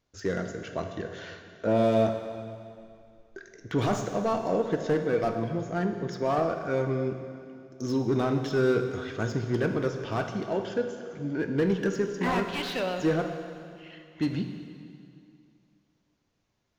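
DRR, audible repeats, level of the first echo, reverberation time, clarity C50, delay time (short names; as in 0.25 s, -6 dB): 5.5 dB, none, none, 2.4 s, 7.0 dB, none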